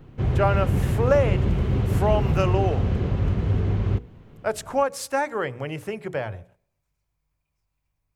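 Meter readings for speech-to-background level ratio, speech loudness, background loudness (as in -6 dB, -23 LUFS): -2.5 dB, -26.5 LUFS, -24.0 LUFS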